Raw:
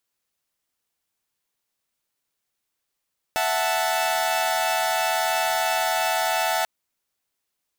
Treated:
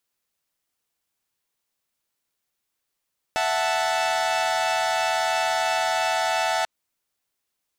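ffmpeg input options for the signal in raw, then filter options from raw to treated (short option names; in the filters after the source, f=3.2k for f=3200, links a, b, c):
-f lavfi -i "aevalsrc='0.0708*((2*mod(659.26*t,1)-1)+(2*mod(739.99*t,1)-1)+(2*mod(880*t,1)-1))':d=3.29:s=44100"
-filter_complex "[0:a]acrossover=split=8600[a][b];[b]acompressor=threshold=-50dB:ratio=4:attack=1:release=60[c];[a][c]amix=inputs=2:normalize=0"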